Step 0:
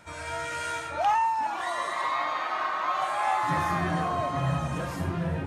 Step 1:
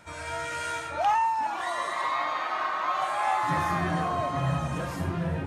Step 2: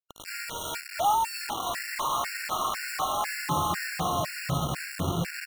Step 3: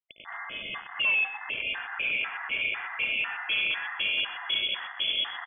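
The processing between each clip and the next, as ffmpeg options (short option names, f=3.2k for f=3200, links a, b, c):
-af anull
-af "acrusher=bits=4:mix=0:aa=0.000001,aecho=1:1:716:0.237,afftfilt=real='re*gt(sin(2*PI*2*pts/sr)*(1-2*mod(floor(b*sr/1024/1400),2)),0)':imag='im*gt(sin(2*PI*2*pts/sr)*(1-2*mod(floor(b*sr/1024/1400),2)),0)':win_size=1024:overlap=0.75"
-af "volume=21.5dB,asoftclip=hard,volume=-21.5dB,aecho=1:1:124|248:0.2|0.0399,lowpass=f=3k:t=q:w=0.5098,lowpass=f=3k:t=q:w=0.6013,lowpass=f=3k:t=q:w=0.9,lowpass=f=3k:t=q:w=2.563,afreqshift=-3500"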